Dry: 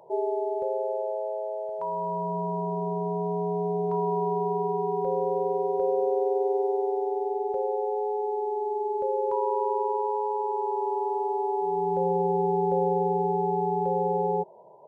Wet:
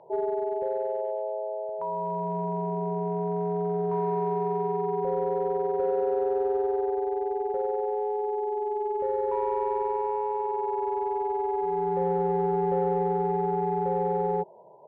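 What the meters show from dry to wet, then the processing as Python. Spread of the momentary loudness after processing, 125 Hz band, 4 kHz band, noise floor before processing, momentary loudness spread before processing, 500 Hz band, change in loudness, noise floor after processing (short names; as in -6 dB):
4 LU, 0.0 dB, n/a, -33 dBFS, 5 LU, -0.5 dB, -0.5 dB, -33 dBFS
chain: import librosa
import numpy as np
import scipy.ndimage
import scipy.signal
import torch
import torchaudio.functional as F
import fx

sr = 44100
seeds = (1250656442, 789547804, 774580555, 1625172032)

p1 = np.clip(x, -10.0 ** (-24.0 / 20.0), 10.0 ** (-24.0 / 20.0))
p2 = x + (p1 * librosa.db_to_amplitude(-7.0))
p3 = fx.air_absorb(p2, sr, metres=320.0)
y = p3 * librosa.db_to_amplitude(-2.5)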